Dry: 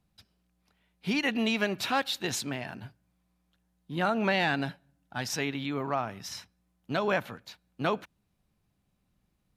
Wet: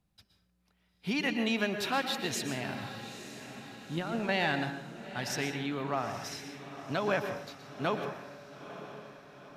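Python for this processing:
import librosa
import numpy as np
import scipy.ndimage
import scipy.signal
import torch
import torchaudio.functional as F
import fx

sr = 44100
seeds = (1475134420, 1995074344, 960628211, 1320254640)

y = fx.over_compress(x, sr, threshold_db=-30.0, ratio=-0.5, at=(2.57, 4.29))
y = fx.echo_diffused(y, sr, ms=912, feedback_pct=51, wet_db=-12.0)
y = fx.rev_plate(y, sr, seeds[0], rt60_s=0.68, hf_ratio=0.6, predelay_ms=105, drr_db=7.5)
y = F.gain(torch.from_numpy(y), -3.0).numpy()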